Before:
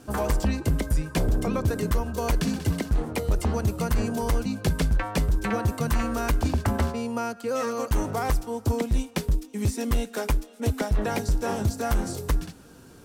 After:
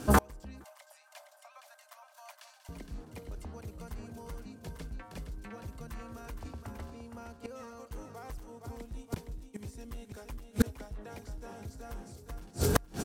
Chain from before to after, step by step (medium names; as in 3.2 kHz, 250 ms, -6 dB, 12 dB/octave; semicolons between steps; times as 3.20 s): on a send: feedback delay 466 ms, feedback 29%, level -7.5 dB; on the sum: level rider gain up to 7 dB; inverted gate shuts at -17 dBFS, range -33 dB; 0.64–2.69 s: Chebyshev high-pass 570 Hz, order 10; trim +6.5 dB